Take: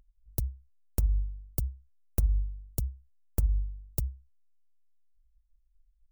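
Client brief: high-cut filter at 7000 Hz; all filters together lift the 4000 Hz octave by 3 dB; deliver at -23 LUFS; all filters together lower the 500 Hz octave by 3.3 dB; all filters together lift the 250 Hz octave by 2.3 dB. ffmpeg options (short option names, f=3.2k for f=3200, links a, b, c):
-af "lowpass=7k,equalizer=f=250:t=o:g=5,equalizer=f=500:t=o:g=-6,equalizer=f=4k:t=o:g=5,volume=11.5dB"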